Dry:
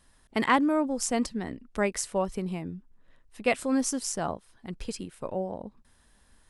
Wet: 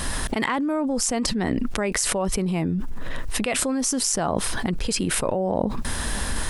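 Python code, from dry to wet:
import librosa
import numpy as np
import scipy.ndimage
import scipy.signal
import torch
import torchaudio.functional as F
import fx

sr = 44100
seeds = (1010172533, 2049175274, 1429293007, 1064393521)

y = fx.env_flatten(x, sr, amount_pct=100)
y = y * 10.0 ** (-4.5 / 20.0)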